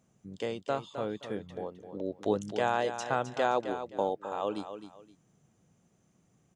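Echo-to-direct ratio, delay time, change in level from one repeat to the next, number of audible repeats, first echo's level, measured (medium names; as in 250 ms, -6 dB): -9.5 dB, 261 ms, -11.5 dB, 2, -10.0 dB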